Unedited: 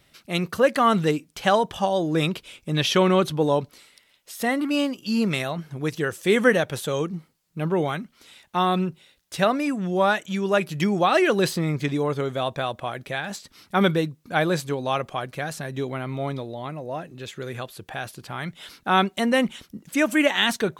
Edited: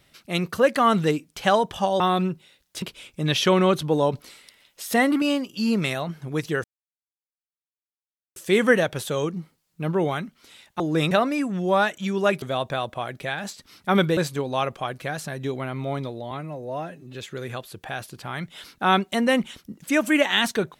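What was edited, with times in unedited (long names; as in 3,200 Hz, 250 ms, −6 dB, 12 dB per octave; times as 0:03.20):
0:02.00–0:02.31: swap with 0:08.57–0:09.39
0:03.62–0:04.71: clip gain +4 dB
0:06.13: splice in silence 1.72 s
0:10.70–0:12.28: remove
0:14.03–0:14.50: remove
0:16.64–0:17.20: time-stretch 1.5×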